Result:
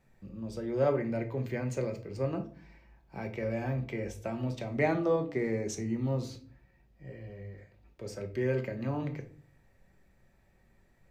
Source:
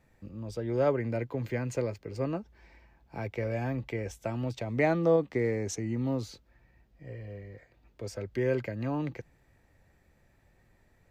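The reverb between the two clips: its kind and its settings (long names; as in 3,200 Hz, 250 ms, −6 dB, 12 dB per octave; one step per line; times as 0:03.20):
rectangular room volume 370 cubic metres, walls furnished, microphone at 1.1 metres
level −3 dB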